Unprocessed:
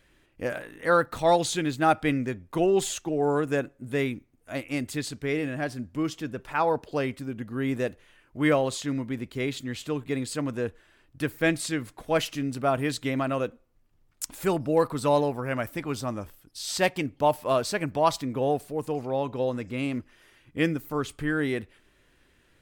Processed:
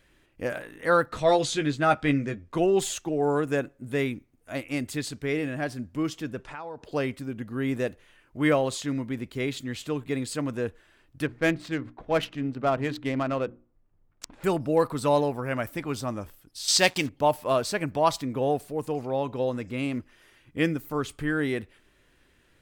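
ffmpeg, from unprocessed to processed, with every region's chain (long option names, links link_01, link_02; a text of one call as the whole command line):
ffmpeg -i in.wav -filter_complex "[0:a]asettb=1/sr,asplit=3[link_01][link_02][link_03];[link_01]atrim=end=1.094[link_04];[link_02]atrim=start=1.09:end=2.57,asetpts=PTS-STARTPTS,afade=type=in:duration=0.004:curve=qsin,afade=type=out:start_time=1.476:duration=0.004:curve=qsin,lowpass=7600,bandreject=frequency=830:width=7.3,asplit=2[link_05][link_06];[link_06]adelay=14,volume=-6.5dB[link_07];[link_05][link_07]amix=inputs=2:normalize=0,atrim=end_sample=65268[link_08];[link_03]atrim=start=2.566[link_09];[link_04][link_08]acrossfade=duration=0.004:curve1=hsin:curve2=qsin[link_10];[link_10][link_09]acrossfade=duration=0.004:curve1=qsin:curve2=hsin,asettb=1/sr,asplit=3[link_11][link_12][link_13];[link_11]atrim=end=6.414[link_14];[link_12]atrim=start=6.41:end=6.85,asetpts=PTS-STARTPTS,afade=type=in:duration=0.004:curve=qsin,afade=type=out:start_time=0.436:duration=0.004:curve=qsin,lowpass=frequency=8500:width=0.5412,lowpass=frequency=8500:width=1.3066,acompressor=threshold=-37dB:ratio=4:attack=3.2:release=140:knee=1:detection=peak[link_15];[link_13]atrim=start=6.846[link_16];[link_14][link_15]acrossfade=duration=0.004:curve1=hsin:curve2=qsin[link_17];[link_17][link_16]acrossfade=duration=0.004:curve1=qsin:curve2=hsin,asettb=1/sr,asplit=3[link_18][link_19][link_20];[link_18]atrim=end=11.264[link_21];[link_19]atrim=start=11.26:end=14.44,asetpts=PTS-STARTPTS,afade=type=in:duration=0.004:curve=qsin,afade=type=out:start_time=3.176:duration=0.004:curve=qsin,highshelf=frequency=7200:gain=-6,bandreject=frequency=60:width_type=h:width=6,bandreject=frequency=120:width_type=h:width=6,bandreject=frequency=180:width_type=h:width=6,bandreject=frequency=240:width_type=h:width=6,bandreject=frequency=300:width_type=h:width=6,bandreject=frequency=360:width_type=h:width=6,adynamicsmooth=sensitivity=4.5:basefreq=1800[link_22];[link_20]atrim=start=14.436[link_23];[link_21][link_22]acrossfade=duration=0.004:curve1=hsin:curve2=qsin[link_24];[link_24][link_23]acrossfade=duration=0.004:curve1=qsin:curve2=hsin,asettb=1/sr,asplit=3[link_25][link_26][link_27];[link_25]atrim=end=16.684[link_28];[link_26]atrim=start=16.68:end=17.09,asetpts=PTS-STARTPTS,afade=type=in:duration=0.004:curve=qsin,afade=type=out:start_time=0.406:duration=0.004:curve=qsin,equalizer=frequency=5300:width_type=o:width=2:gain=11.5,acompressor=mode=upward:threshold=-25dB:ratio=2.5:attack=3.2:release=140:knee=2.83:detection=peak,acrusher=bits=6:mix=0:aa=0.5[link_29];[link_27]atrim=start=17.086[link_30];[link_28][link_29]acrossfade=duration=0.004:curve1=hsin:curve2=qsin[link_31];[link_31][link_30]acrossfade=duration=0.004:curve1=qsin:curve2=hsin" out.wav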